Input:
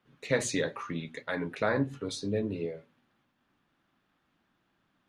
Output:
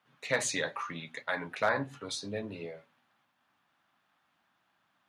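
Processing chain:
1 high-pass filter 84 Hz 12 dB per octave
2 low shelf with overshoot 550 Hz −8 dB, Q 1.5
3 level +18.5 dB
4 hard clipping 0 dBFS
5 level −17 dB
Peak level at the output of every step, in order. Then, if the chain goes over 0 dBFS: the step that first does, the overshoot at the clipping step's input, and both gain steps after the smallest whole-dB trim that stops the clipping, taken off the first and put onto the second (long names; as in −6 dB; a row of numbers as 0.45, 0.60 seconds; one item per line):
−14.0, −15.0, +3.5, 0.0, −17.0 dBFS
step 3, 3.5 dB
step 3 +14.5 dB, step 5 −13 dB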